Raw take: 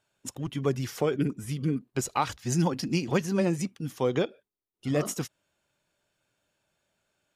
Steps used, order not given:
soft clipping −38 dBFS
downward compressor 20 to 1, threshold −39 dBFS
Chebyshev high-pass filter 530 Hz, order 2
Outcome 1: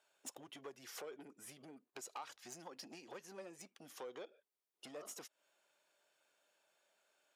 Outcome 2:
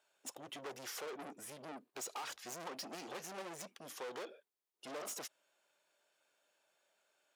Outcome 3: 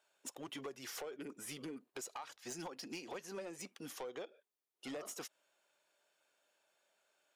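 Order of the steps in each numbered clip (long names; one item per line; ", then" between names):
downward compressor, then soft clipping, then Chebyshev high-pass filter
soft clipping, then Chebyshev high-pass filter, then downward compressor
Chebyshev high-pass filter, then downward compressor, then soft clipping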